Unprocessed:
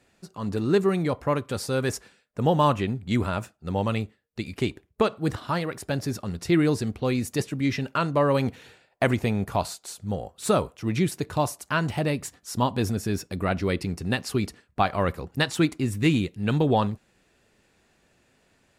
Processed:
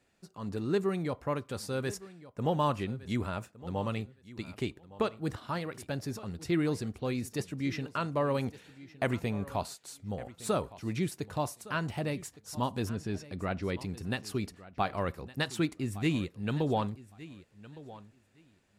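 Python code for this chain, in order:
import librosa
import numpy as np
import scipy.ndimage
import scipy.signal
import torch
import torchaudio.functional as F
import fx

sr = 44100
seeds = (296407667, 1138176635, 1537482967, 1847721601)

y = fx.air_absorb(x, sr, metres=62.0, at=(12.89, 13.79))
y = fx.echo_feedback(y, sr, ms=1162, feedback_pct=17, wet_db=-18)
y = y * 10.0 ** (-8.0 / 20.0)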